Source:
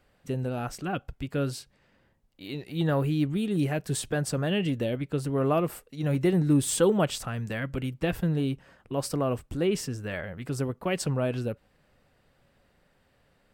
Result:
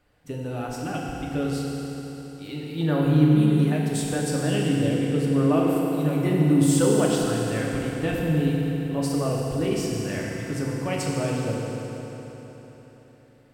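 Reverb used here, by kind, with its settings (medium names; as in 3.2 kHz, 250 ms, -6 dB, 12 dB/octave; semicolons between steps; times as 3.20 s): FDN reverb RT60 4 s, high-frequency decay 0.85×, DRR -3.5 dB; trim -2 dB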